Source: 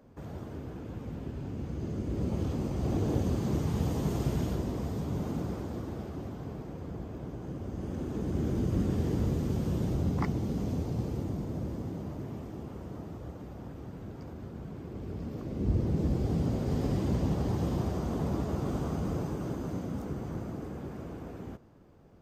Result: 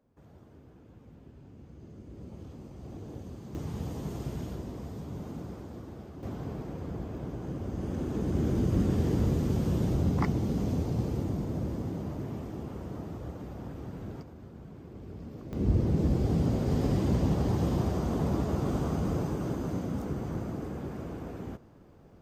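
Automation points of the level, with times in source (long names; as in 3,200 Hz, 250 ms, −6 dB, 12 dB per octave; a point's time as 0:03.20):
−13.5 dB
from 0:03.55 −6 dB
from 0:06.23 +2.5 dB
from 0:14.22 −5 dB
from 0:15.53 +2.5 dB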